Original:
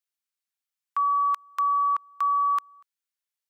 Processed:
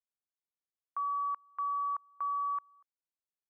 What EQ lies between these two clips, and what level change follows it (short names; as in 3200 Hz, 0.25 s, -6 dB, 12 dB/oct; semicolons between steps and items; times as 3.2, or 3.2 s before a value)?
LPF 1100 Hz 12 dB/oct; air absorption 450 m; -4.5 dB